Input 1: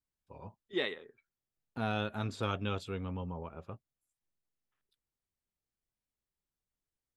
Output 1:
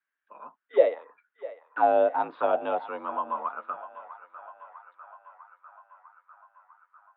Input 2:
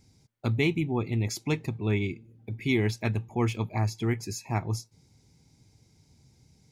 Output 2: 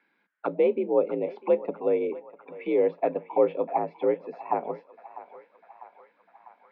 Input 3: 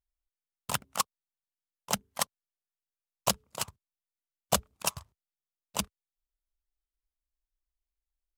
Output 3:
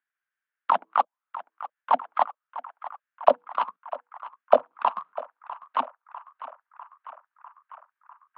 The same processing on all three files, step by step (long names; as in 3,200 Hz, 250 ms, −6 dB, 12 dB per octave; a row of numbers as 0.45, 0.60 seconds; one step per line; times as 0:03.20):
in parallel at +2.5 dB: brickwall limiter −19.5 dBFS
on the sum: single-sideband voice off tune +56 Hz 150–3,500 Hz
envelope filter 560–1,600 Hz, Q 5.8, down, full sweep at −22 dBFS
feedback echo with a band-pass in the loop 649 ms, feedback 75%, band-pass 1,400 Hz, level −13.5 dB
loudness normalisation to −27 LKFS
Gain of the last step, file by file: +14.0, +10.0, +15.0 decibels